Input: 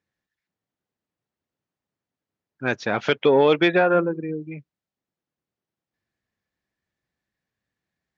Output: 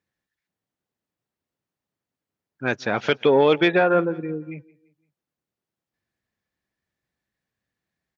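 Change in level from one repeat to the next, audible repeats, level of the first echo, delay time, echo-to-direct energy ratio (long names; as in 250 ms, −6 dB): −7.0 dB, 2, −23.5 dB, 171 ms, −22.5 dB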